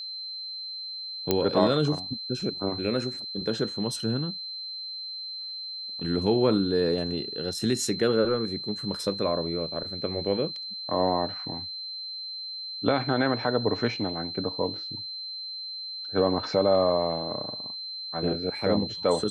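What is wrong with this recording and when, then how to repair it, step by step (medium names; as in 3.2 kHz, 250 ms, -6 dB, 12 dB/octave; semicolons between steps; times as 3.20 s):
whine 4.1 kHz -34 dBFS
1.31 s: pop -8 dBFS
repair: de-click; band-stop 4.1 kHz, Q 30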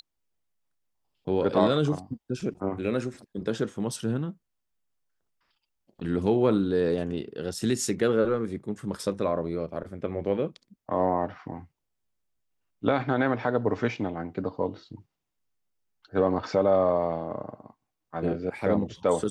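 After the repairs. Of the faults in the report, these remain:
nothing left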